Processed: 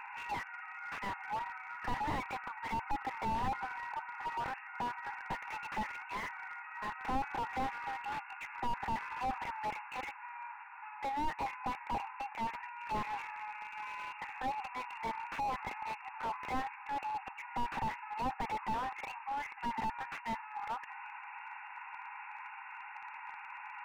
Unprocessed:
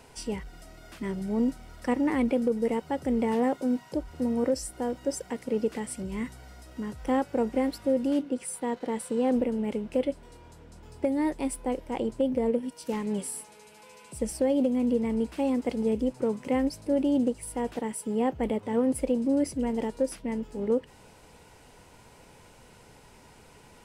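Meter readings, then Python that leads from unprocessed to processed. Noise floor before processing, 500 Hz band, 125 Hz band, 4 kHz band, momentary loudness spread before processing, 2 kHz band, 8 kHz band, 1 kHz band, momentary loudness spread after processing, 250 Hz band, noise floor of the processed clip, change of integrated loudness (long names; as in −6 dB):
−54 dBFS, −21.5 dB, −8.5 dB, −4.5 dB, 10 LU, +3.0 dB, −19.5 dB, +2.5 dB, 9 LU, −21.5 dB, −49 dBFS, −11.0 dB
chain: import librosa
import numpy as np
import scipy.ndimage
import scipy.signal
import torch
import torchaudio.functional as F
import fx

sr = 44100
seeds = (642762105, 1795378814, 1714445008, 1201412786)

y = fx.brickwall_bandpass(x, sr, low_hz=770.0, high_hz=2800.0)
y = fx.slew_limit(y, sr, full_power_hz=4.4)
y = y * librosa.db_to_amplitude(12.5)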